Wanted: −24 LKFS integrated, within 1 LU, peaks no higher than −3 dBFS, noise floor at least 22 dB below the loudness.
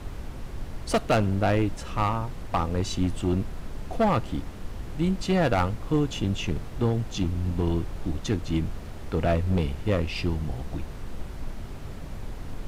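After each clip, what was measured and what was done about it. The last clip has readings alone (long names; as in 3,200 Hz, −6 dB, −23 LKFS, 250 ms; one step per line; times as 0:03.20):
share of clipped samples 1.3%; peaks flattened at −17.0 dBFS; background noise floor −38 dBFS; target noise floor −50 dBFS; integrated loudness −27.5 LKFS; sample peak −17.0 dBFS; target loudness −24.0 LKFS
→ clipped peaks rebuilt −17 dBFS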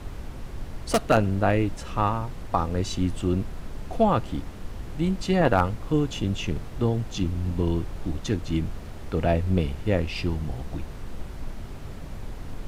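share of clipped samples 0.0%; background noise floor −38 dBFS; target noise floor −49 dBFS
→ noise reduction from a noise print 11 dB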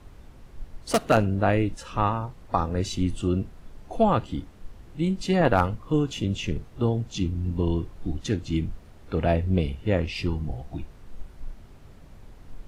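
background noise floor −48 dBFS; target noise floor −49 dBFS
→ noise reduction from a noise print 6 dB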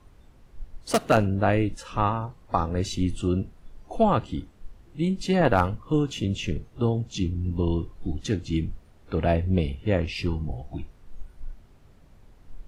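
background noise floor −54 dBFS; integrated loudness −26.5 LKFS; sample peak −8.0 dBFS; target loudness −24.0 LKFS
→ level +2.5 dB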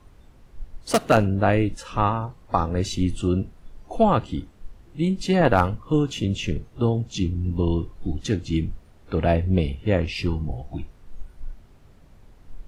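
integrated loudness −24.0 LKFS; sample peak −5.5 dBFS; background noise floor −51 dBFS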